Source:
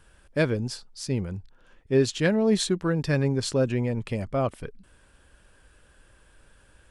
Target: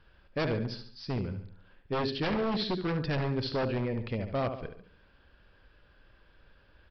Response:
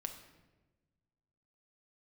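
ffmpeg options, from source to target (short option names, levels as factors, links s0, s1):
-af "aecho=1:1:71|142|213|284|355:0.355|0.163|0.0751|0.0345|0.0159,aresample=11025,aeval=exprs='0.1*(abs(mod(val(0)/0.1+3,4)-2)-1)':c=same,aresample=44100,volume=0.631"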